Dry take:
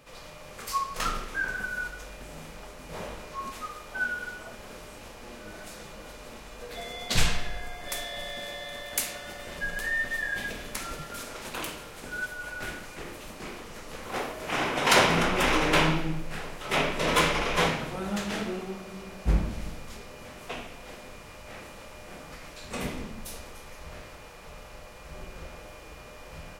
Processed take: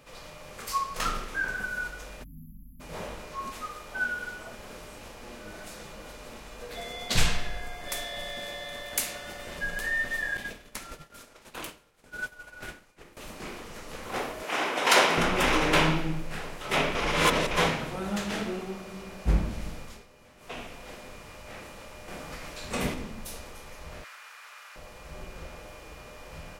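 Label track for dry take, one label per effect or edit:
2.240000	2.800000	spectral selection erased 280–11000 Hz
10.370000	13.170000	expander -31 dBFS
14.430000	15.180000	high-pass 310 Hz
16.950000	17.510000	reverse
19.820000	20.620000	dip -11.5 dB, fades 0.25 s
22.080000	22.940000	gain +3.5 dB
24.040000	24.760000	resonant high-pass 1.4 kHz, resonance Q 1.9

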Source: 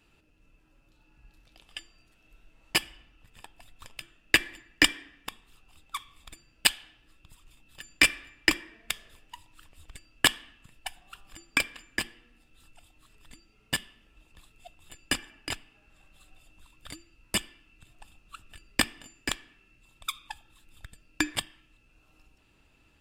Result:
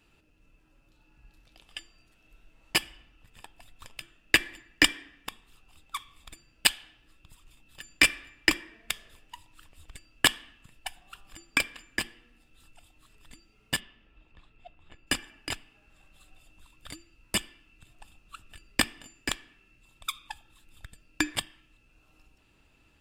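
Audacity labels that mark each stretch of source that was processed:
13.790000	15.060000	low-pass 3.8 kHz -> 2.2 kHz

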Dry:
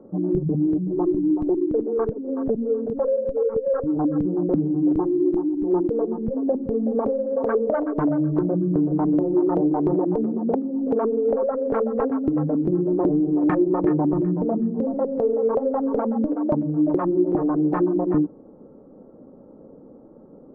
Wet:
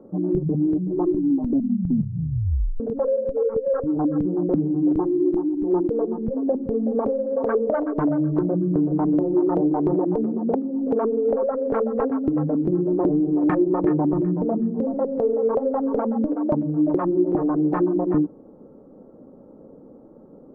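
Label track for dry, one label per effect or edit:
1.180000	1.180000	tape stop 1.62 s

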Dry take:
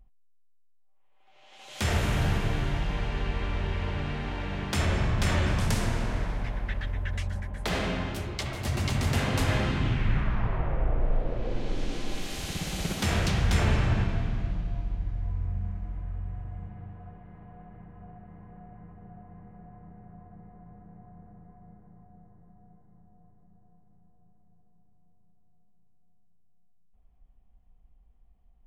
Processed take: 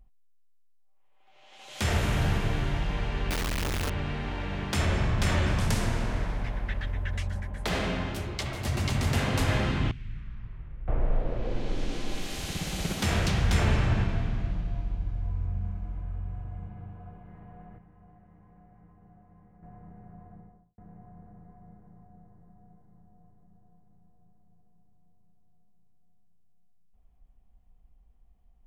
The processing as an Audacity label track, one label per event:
3.300000	3.900000	one-bit comparator
9.910000	10.880000	amplifier tone stack bass-middle-treble 6-0-2
14.920000	17.280000	band-stop 1.9 kHz, Q 7.9
17.780000	19.630000	feedback comb 61 Hz, decay 0.44 s, harmonics odd, mix 70%
20.290000	20.780000	studio fade out

